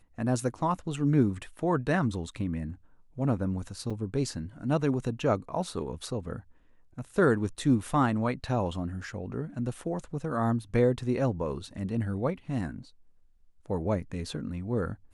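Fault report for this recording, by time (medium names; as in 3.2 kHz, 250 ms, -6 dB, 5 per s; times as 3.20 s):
3.90 s: dropout 5 ms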